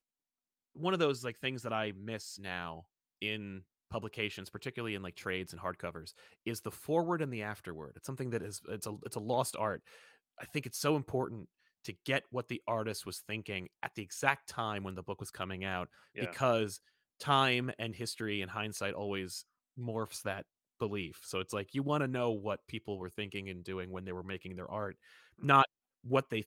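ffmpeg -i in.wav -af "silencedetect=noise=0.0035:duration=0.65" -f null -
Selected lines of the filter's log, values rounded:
silence_start: 0.00
silence_end: 0.76 | silence_duration: 0.76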